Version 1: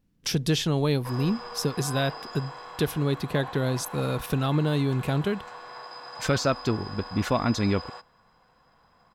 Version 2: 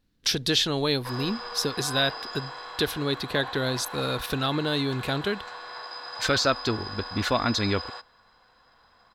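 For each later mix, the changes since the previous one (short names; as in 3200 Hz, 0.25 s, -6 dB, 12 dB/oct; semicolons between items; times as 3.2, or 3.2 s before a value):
master: add fifteen-band EQ 160 Hz -9 dB, 1600 Hz +5 dB, 4000 Hz +10 dB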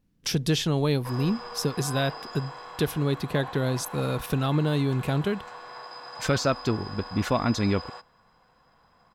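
master: add fifteen-band EQ 160 Hz +9 dB, 1600 Hz -5 dB, 4000 Hz -10 dB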